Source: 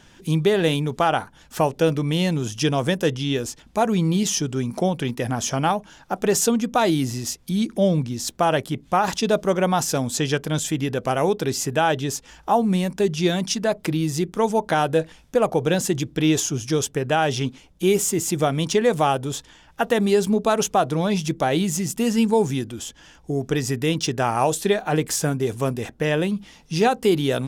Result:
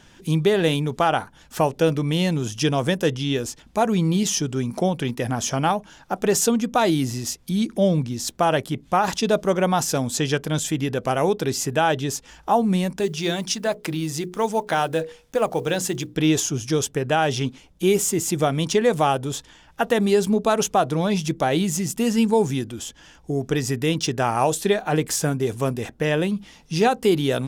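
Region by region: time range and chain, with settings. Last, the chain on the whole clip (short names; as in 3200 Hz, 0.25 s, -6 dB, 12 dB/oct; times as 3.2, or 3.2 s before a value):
13–16.15 block floating point 7-bit + low shelf 460 Hz -4.5 dB + notches 60/120/180/240/300/360/420/480 Hz
whole clip: dry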